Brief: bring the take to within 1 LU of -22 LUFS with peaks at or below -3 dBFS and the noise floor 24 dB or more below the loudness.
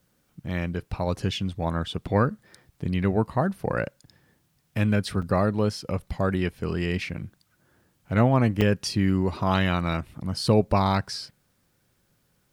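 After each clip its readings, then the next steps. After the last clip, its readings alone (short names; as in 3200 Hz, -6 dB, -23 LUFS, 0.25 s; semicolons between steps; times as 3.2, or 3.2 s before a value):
dropouts 2; longest dropout 5.6 ms; loudness -26.0 LUFS; peak -8.5 dBFS; loudness target -22.0 LUFS
-> interpolate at 5.22/8.61, 5.6 ms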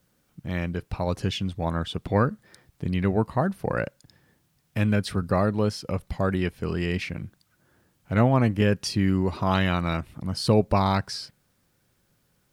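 dropouts 0; loudness -26.0 LUFS; peak -8.5 dBFS; loudness target -22.0 LUFS
-> gain +4 dB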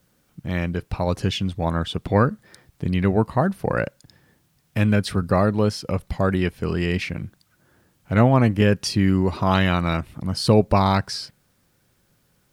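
loudness -22.0 LUFS; peak -4.5 dBFS; noise floor -65 dBFS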